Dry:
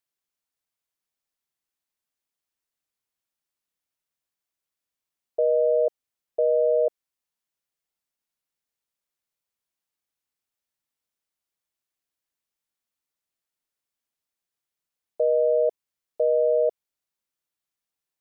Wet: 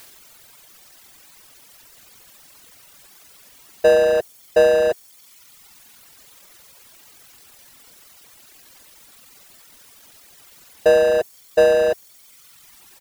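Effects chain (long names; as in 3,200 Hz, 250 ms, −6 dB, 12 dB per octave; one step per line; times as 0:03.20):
power curve on the samples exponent 0.5
reverb reduction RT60 1.6 s
tempo change 1.4×
level +7.5 dB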